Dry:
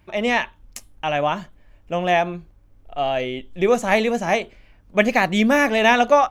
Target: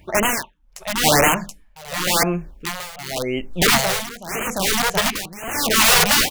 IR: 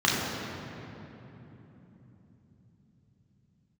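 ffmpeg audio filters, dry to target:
-filter_complex "[0:a]acontrast=28,bandreject=f=50:t=h:w=6,bandreject=f=100:t=h:w=6,bandreject=f=150:t=h:w=6,bandreject=f=200:t=h:w=6,asettb=1/sr,asplit=3[a][b][c];[a]atrim=end=4.354[d];[b]atrim=start=4.35:end=5.05,asetpts=PTS-STARTPTS,afade=t=in:d=0.004:c=qsin,afade=t=out:st=0.696:d=0.004:c=qsin,acompressor=threshold=-21dB:ratio=2.5[e];[c]atrim=start=5.046[f];[d][e]acrossfade=d=0.004:c1=hsin:c2=qsin[g];[g][f]acrossfade=d=0.004:c1=qsin:c2=hsin,aeval=exprs='(mod(3.98*val(0)+1,2)-1)/3.98':c=same,asplit=2[h][i];[i]aecho=0:1:728:0.596[j];[h][j]amix=inputs=2:normalize=0,tremolo=f=0.84:d=0.91,afftfilt=real='re*(1-between(b*sr/1024,250*pow(4500/250,0.5+0.5*sin(2*PI*0.96*pts/sr))/1.41,250*pow(4500/250,0.5+0.5*sin(2*PI*0.96*pts/sr))*1.41))':imag='im*(1-between(b*sr/1024,250*pow(4500/250,0.5+0.5*sin(2*PI*0.96*pts/sr))/1.41,250*pow(4500/250,0.5+0.5*sin(2*PI*0.96*pts/sr))*1.41))':win_size=1024:overlap=0.75,volume=3.5dB"

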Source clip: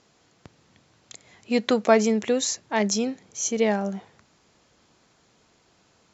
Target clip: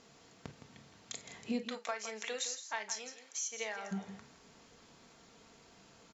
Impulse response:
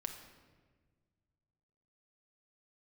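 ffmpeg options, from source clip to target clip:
-filter_complex "[0:a]asplit=3[a][b][c];[a]afade=t=out:st=1.61:d=0.02[d];[b]highpass=1.1k,afade=t=in:st=1.61:d=0.02,afade=t=out:st=3.91:d=0.02[e];[c]afade=t=in:st=3.91:d=0.02[f];[d][e][f]amix=inputs=3:normalize=0,acompressor=threshold=-37dB:ratio=10,aecho=1:1:164:0.282[g];[1:a]atrim=start_sample=2205,atrim=end_sample=3087,asetrate=52920,aresample=44100[h];[g][h]afir=irnorm=-1:irlink=0,volume=4.5dB"

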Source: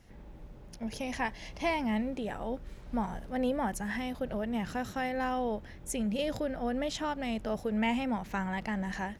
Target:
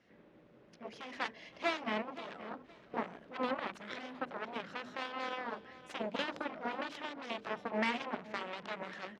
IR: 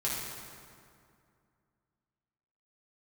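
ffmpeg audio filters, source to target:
-af "equalizer=f=850:t=o:w=0.39:g=-8.5,bandreject=f=50:t=h:w=6,bandreject=f=100:t=h:w=6,bandreject=f=150:t=h:w=6,bandreject=f=200:t=h:w=6,bandreject=f=250:t=h:w=6,bandreject=f=300:t=h:w=6,bandreject=f=350:t=h:w=6,bandreject=f=400:t=h:w=6,bandreject=f=450:t=h:w=6,aeval=exprs='0.1*(cos(1*acos(clip(val(0)/0.1,-1,1)))-cos(1*PI/2))+0.0178*(cos(3*acos(clip(val(0)/0.1,-1,1)))-cos(3*PI/2))+0.0158*(cos(7*acos(clip(val(0)/0.1,-1,1)))-cos(7*PI/2))':c=same,highpass=250,lowpass=3.4k,aecho=1:1:519|1038:0.141|0.0339,volume=1.5dB"

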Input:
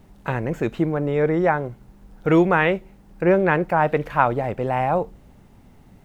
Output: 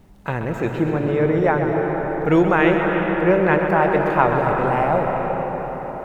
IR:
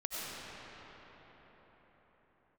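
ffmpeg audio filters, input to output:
-filter_complex "[0:a]asplit=2[a][b];[1:a]atrim=start_sample=2205,adelay=130[c];[b][c]afir=irnorm=-1:irlink=0,volume=-5dB[d];[a][d]amix=inputs=2:normalize=0"

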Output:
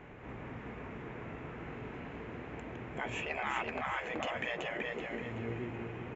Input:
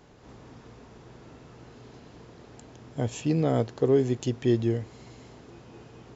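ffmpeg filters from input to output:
-af "highshelf=f=3.3k:t=q:w=3:g=-13,aecho=1:1:379|758|1137|1516|1895:0.631|0.233|0.0864|0.032|0.0118,afftfilt=real='re*lt(hypot(re,im),0.1)':imag='im*lt(hypot(re,im),0.1)':win_size=1024:overlap=0.75,volume=3dB"

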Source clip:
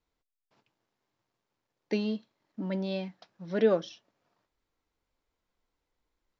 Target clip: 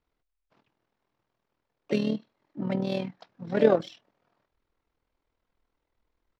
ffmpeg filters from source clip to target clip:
-filter_complex "[0:a]asplit=3[a][b][c];[b]asetrate=29433,aresample=44100,atempo=1.49831,volume=-17dB[d];[c]asetrate=58866,aresample=44100,atempo=0.749154,volume=-10dB[e];[a][d][e]amix=inputs=3:normalize=0,adynamicsmooth=sensitivity=7:basefreq=4.5k,tremolo=f=40:d=0.667,volume=6dB"

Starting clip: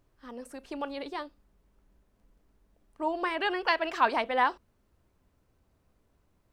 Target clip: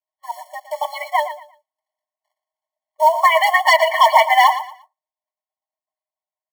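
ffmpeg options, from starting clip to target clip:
-filter_complex "[0:a]agate=range=-33dB:threshold=-55dB:ratio=3:detection=peak,lowpass=f=1.7k:p=1,afftdn=nr=19:nf=-48,aecho=1:1:6.5:0.8,acrossover=split=860[a][b];[a]acompressor=threshold=-43dB:ratio=4[c];[b]asoftclip=type=hard:threshold=-25dB[d];[c][d]amix=inputs=2:normalize=0,apsyclip=28.5dB,acrusher=bits=5:mode=log:mix=0:aa=0.000001,asplit=2[e][f];[f]aecho=0:1:116|232|348:0.251|0.0628|0.0157[g];[e][g]amix=inputs=2:normalize=0,afftfilt=real='re*eq(mod(floor(b*sr/1024/580),2),1)':imag='im*eq(mod(floor(b*sr/1024/580),2),1)':win_size=1024:overlap=0.75,volume=-5dB"

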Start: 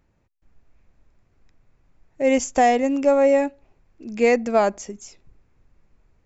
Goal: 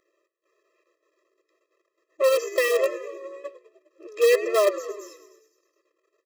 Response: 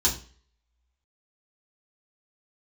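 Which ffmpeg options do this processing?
-filter_complex "[0:a]aeval=exprs='if(lt(val(0),0),0.251*val(0),val(0))':c=same,asplit=3[a][b][c];[a]afade=t=out:st=2.87:d=0.02[d];[b]agate=range=-26dB:threshold=-13dB:ratio=16:detection=peak,afade=t=in:st=2.87:d=0.02,afade=t=out:st=3.44:d=0.02[e];[c]afade=t=in:st=3.44:d=0.02[f];[d][e][f]amix=inputs=3:normalize=0,asplit=2[g][h];[h]asplit=7[i][j][k][l][m][n][o];[i]adelay=102,afreqshift=-63,volume=-15.5dB[p];[j]adelay=204,afreqshift=-126,volume=-19.5dB[q];[k]adelay=306,afreqshift=-189,volume=-23.5dB[r];[l]adelay=408,afreqshift=-252,volume=-27.5dB[s];[m]adelay=510,afreqshift=-315,volume=-31.6dB[t];[n]adelay=612,afreqshift=-378,volume=-35.6dB[u];[o]adelay=714,afreqshift=-441,volume=-39.6dB[v];[p][q][r][s][t][u][v]amix=inputs=7:normalize=0[w];[g][w]amix=inputs=2:normalize=0,acrossover=split=4300[x][y];[y]acompressor=threshold=-48dB:ratio=4:attack=1:release=60[z];[x][z]amix=inputs=2:normalize=0,asplit=2[aa][ab];[ab]aeval=exprs='(mod(4.73*val(0)+1,2)-1)/4.73':c=same,volume=-8dB[ac];[aa][ac]amix=inputs=2:normalize=0,afftfilt=real='re*eq(mod(floor(b*sr/1024/340),2),1)':imag='im*eq(mod(floor(b*sr/1024/340),2),1)':win_size=1024:overlap=0.75,volume=3dB"

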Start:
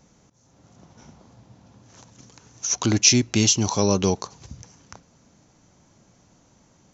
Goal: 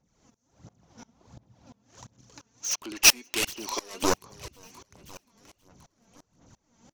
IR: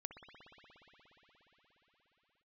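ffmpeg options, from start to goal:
-filter_complex "[0:a]asettb=1/sr,asplit=3[a][b][c];[a]atrim=end=2.704[d];[b]atrim=start=2.7:end=4.03,asetpts=PTS-STARTPTS,afade=t=in:d=0.004:c=qsin,afade=t=out:st=1.326:d=0.004:c=qsin,highpass=f=350:w=0.5412,highpass=f=350:w=1.3066,equalizer=f=460:t=q:w=4:g=-5,equalizer=f=750:t=q:w=4:g=-8,equalizer=f=2.7k:t=q:w=4:g=9,lowpass=f=6.2k:w=0.5412,lowpass=f=6.2k:w=1.3066[e];[c]atrim=start=4.026[f];[d][e]acrossfade=d=0.004:c1=hsin:c2=qsin[g];[g][f]acrossfade=d=0.004:c1=qsin:c2=hsin,aeval=exprs='0.531*(cos(1*acos(clip(val(0)/0.531,-1,1)))-cos(1*PI/2))+0.188*(cos(7*acos(clip(val(0)/0.531,-1,1)))-cos(7*PI/2))':c=same,aecho=1:1:528|1056|1584|2112:0.126|0.0655|0.034|0.0177,aphaser=in_gain=1:out_gain=1:delay=4.5:decay=0.57:speed=1.4:type=sinusoidal,aeval=exprs='val(0)*pow(10,-26*if(lt(mod(-2.9*n/s,1),2*abs(-2.9)/1000),1-mod(-2.9*n/s,1)/(2*abs(-2.9)/1000),(mod(-2.9*n/s,1)-2*abs(-2.9)/1000)/(1-2*abs(-2.9)/1000))/20)':c=same,volume=-1dB"

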